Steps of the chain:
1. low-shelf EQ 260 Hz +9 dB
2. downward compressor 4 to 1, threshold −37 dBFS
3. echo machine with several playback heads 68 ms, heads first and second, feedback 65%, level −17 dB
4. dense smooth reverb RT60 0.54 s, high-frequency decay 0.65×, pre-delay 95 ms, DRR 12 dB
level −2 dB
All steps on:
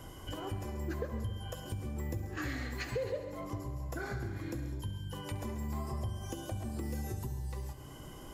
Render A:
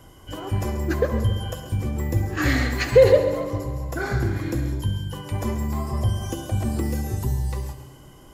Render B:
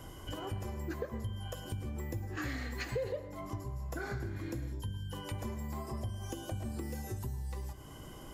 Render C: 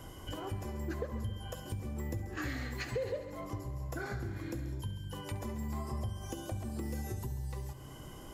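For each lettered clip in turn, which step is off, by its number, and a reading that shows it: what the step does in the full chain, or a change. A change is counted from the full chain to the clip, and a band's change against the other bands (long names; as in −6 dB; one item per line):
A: 2, average gain reduction 12.0 dB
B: 3, echo-to-direct ratio −8.0 dB to −12.0 dB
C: 4, echo-to-direct ratio −8.0 dB to −10.5 dB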